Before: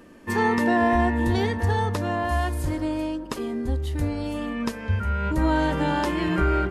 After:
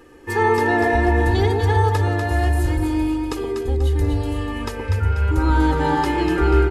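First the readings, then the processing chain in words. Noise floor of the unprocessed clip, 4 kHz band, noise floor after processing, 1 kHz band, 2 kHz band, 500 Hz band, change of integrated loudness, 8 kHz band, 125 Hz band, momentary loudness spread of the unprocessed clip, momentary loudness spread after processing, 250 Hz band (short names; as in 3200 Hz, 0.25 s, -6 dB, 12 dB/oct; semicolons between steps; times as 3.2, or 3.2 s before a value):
-38 dBFS, +3.0 dB, -30 dBFS, +4.0 dB, +4.0 dB, +5.5 dB, +5.0 dB, +3.5 dB, +7.0 dB, 8 LU, 7 LU, +2.5 dB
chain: comb 2.4 ms, depth 83%; echo with dull and thin repeats by turns 0.122 s, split 890 Hz, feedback 66%, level -2 dB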